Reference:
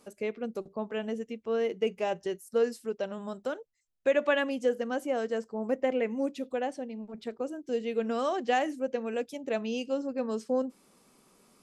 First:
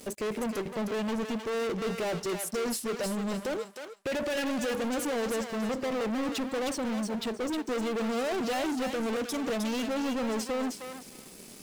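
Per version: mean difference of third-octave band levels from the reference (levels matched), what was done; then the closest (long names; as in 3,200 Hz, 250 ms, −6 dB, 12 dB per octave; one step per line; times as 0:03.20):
12.5 dB: parametric band 1,100 Hz −14.5 dB 1 octave
brickwall limiter −27.5 dBFS, peak gain reduction 9 dB
leveller curve on the samples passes 5
feedback echo with a high-pass in the loop 311 ms, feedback 21%, high-pass 960 Hz, level −4 dB
level −1 dB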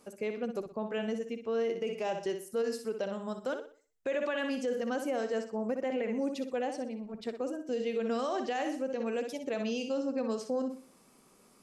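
4.0 dB: dynamic equaliser 4,700 Hz, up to +6 dB, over −57 dBFS, Q 1.4
on a send: flutter between parallel walls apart 10.5 metres, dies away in 0.4 s
on the sum: brickwall limiter −24.5 dBFS, peak gain reduction 10.5 dB
parametric band 3,600 Hz −2.5 dB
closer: second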